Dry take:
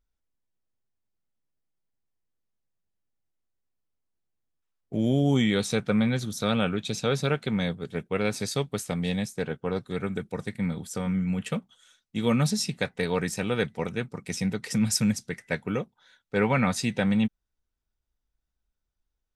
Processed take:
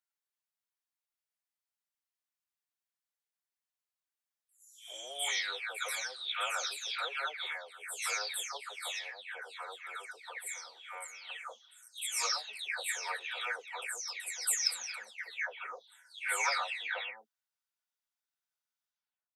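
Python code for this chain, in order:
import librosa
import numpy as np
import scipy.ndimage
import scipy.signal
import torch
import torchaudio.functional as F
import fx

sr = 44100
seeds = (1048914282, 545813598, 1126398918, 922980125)

y = fx.spec_delay(x, sr, highs='early', ms=444)
y = scipy.signal.sosfilt(scipy.signal.bessel(6, 1100.0, 'highpass', norm='mag', fs=sr, output='sos'), y)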